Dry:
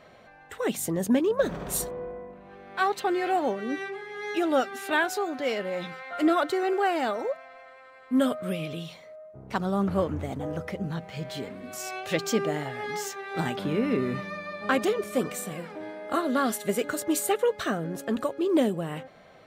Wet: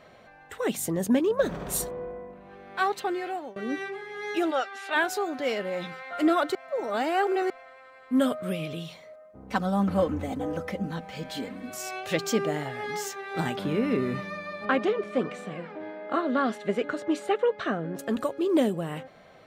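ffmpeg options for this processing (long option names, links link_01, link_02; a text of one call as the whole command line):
ffmpeg -i in.wav -filter_complex "[0:a]asplit=3[link_01][link_02][link_03];[link_01]afade=type=out:start_time=4.5:duration=0.02[link_04];[link_02]highpass=650,lowpass=5700,afade=type=in:start_time=4.5:duration=0.02,afade=type=out:start_time=4.95:duration=0.02[link_05];[link_03]afade=type=in:start_time=4.95:duration=0.02[link_06];[link_04][link_05][link_06]amix=inputs=3:normalize=0,asettb=1/sr,asplit=3[link_07][link_08][link_09];[link_07]atrim=end=9.134[link_10];[link_08]atrim=start=9.13:end=11.7,asetpts=PTS-STARTPTS,afade=type=in:duration=0.004:curve=qsin,afade=type=out:start_time=2.566:duration=0.004:curve=qsin,aecho=1:1:3.9:0.65,atrim=end_sample=113337[link_11];[link_09]atrim=start=11.696[link_12];[link_10][link_11]acrossfade=duration=0.004:curve1=hsin:curve2=qsin[link_13];[link_13][link_12]acrossfade=duration=0.004:curve1=qsin:curve2=hsin,asettb=1/sr,asplit=3[link_14][link_15][link_16];[link_14]atrim=end=14.654[link_17];[link_15]atrim=start=14.65:end=17.99,asetpts=PTS-STARTPTS,afade=type=in:duration=0.004:curve=qsin,afade=type=out:start_time=3.336:duration=0.004:curve=qsin,highpass=130,lowpass=3100[link_18];[link_16]atrim=start=17.986[link_19];[link_17][link_18]acrossfade=duration=0.004:curve1=hsin:curve2=qsin[link_20];[link_20][link_19]acrossfade=duration=0.004:curve1=qsin:curve2=hsin,asplit=4[link_21][link_22][link_23][link_24];[link_21]atrim=end=3.56,asetpts=PTS-STARTPTS,afade=type=out:start_time=2.59:duration=0.97:curve=qsin:silence=0.0891251[link_25];[link_22]atrim=start=3.56:end=6.552,asetpts=PTS-STARTPTS,afade=type=in:duration=0.004:curve=hsin:silence=0.0891251[link_26];[link_23]atrim=start=6.548:end=7.502,asetpts=PTS-STARTPTS,areverse[link_27];[link_24]atrim=start=7.498[link_28];[link_25][link_26]concat=n=2:v=0:a=1[link_29];[link_29][link_27]acrossfade=duration=0.004:curve1=hsin:curve2=hsin[link_30];[link_30][link_28]acrossfade=duration=0.004:curve1=hsin:curve2=hsin" out.wav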